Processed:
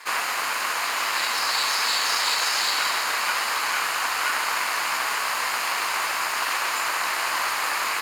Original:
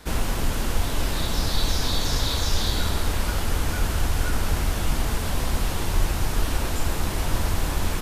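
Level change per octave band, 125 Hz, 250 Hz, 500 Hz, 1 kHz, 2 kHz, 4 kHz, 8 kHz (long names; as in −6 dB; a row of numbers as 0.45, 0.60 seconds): below −30 dB, −16.5 dB, −4.0 dB, +8.5 dB, +10.5 dB, +5.0 dB, +4.0 dB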